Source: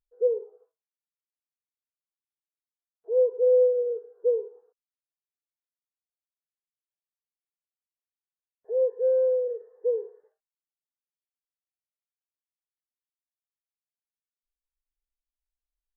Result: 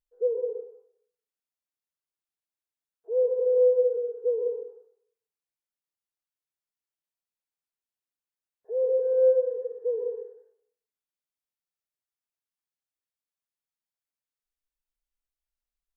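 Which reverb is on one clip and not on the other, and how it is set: plate-style reverb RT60 0.69 s, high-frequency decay 0.8×, pre-delay 105 ms, DRR 2.5 dB; trim -2.5 dB

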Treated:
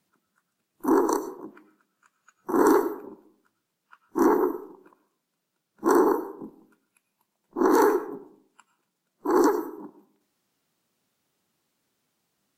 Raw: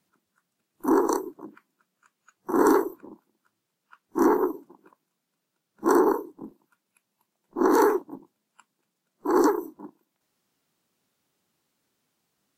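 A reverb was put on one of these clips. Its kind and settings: algorithmic reverb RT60 0.6 s, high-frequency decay 0.45×, pre-delay 60 ms, DRR 13 dB

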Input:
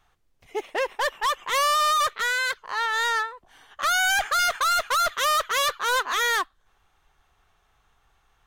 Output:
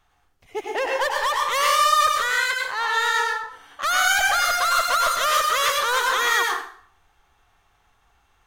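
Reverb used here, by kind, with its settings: plate-style reverb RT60 0.59 s, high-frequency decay 0.8×, pre-delay 85 ms, DRR -1 dB

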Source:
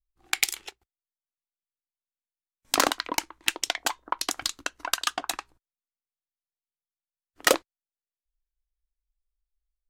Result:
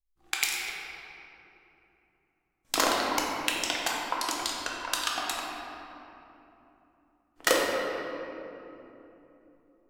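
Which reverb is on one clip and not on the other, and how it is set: simulated room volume 160 m³, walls hard, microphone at 0.66 m; trim -5 dB

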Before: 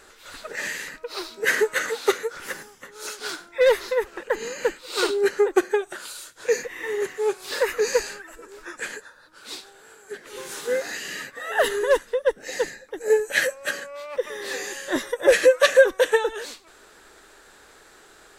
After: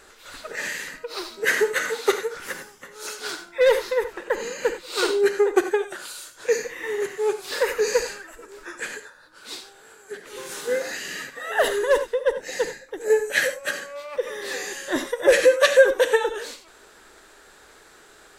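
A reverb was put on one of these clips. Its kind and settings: gated-style reverb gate 110 ms rising, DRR 10 dB

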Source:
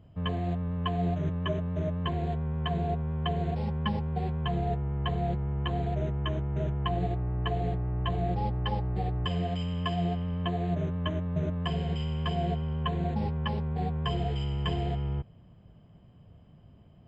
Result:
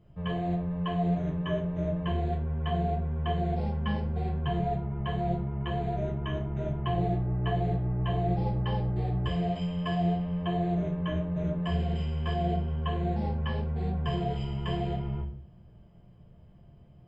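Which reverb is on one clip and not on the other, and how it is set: simulated room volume 39 m³, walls mixed, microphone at 0.85 m; trim -6.5 dB

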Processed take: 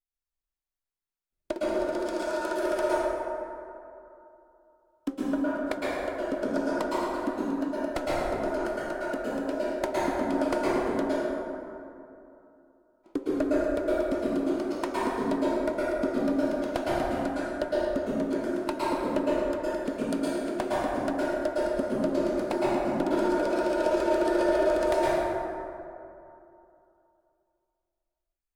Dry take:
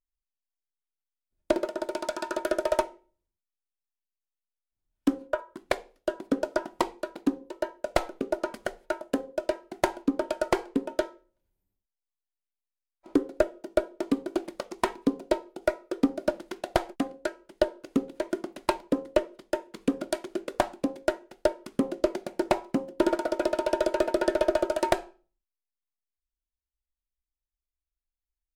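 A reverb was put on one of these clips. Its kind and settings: plate-style reverb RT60 2.8 s, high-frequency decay 0.4×, pre-delay 100 ms, DRR -8.5 dB; trim -8 dB

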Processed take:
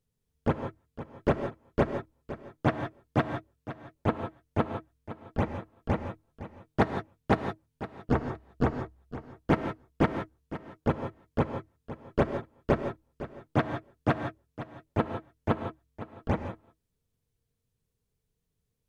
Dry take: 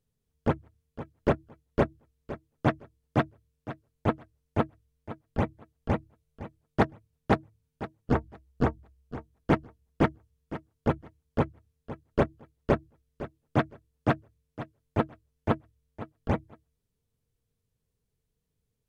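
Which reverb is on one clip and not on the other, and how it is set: gated-style reverb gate 190 ms rising, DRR 7 dB; trim -1 dB

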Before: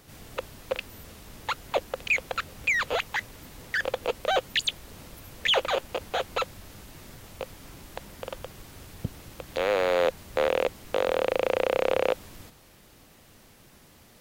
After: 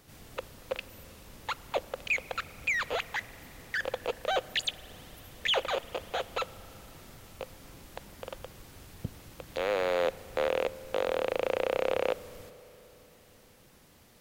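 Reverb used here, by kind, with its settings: spring tank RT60 3.9 s, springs 38 ms, chirp 25 ms, DRR 17.5 dB; trim -4.5 dB

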